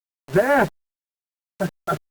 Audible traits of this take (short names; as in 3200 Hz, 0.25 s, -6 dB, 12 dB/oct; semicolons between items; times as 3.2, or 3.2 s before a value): a quantiser's noise floor 6-bit, dither none; Opus